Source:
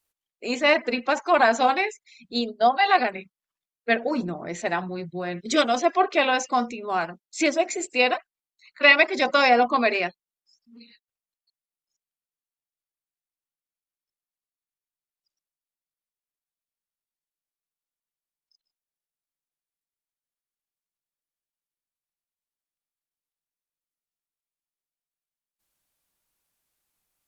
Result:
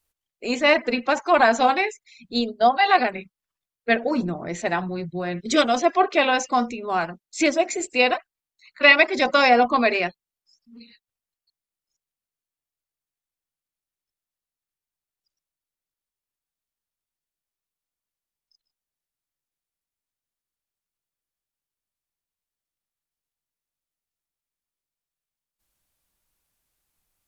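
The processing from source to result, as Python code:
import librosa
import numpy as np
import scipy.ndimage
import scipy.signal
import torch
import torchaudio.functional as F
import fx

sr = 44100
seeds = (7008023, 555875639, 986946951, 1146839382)

y = fx.low_shelf(x, sr, hz=99.0, db=11.0)
y = F.gain(torch.from_numpy(y), 1.5).numpy()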